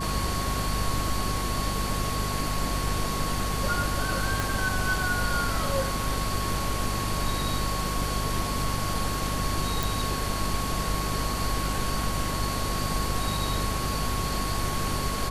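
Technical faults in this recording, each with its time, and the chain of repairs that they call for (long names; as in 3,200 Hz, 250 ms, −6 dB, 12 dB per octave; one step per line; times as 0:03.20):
mains hum 50 Hz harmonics 5 −32 dBFS
whistle 1,100 Hz −33 dBFS
0:04.40: click
0:09.83: click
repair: click removal
notch filter 1,100 Hz, Q 30
hum removal 50 Hz, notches 5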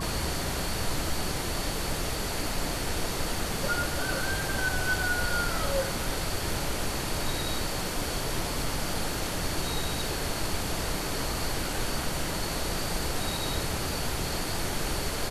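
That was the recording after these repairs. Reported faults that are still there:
0:04.40: click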